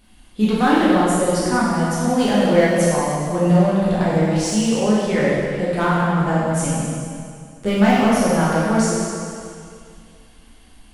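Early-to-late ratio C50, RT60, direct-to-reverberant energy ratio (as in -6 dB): -2.5 dB, 2.3 s, -8.0 dB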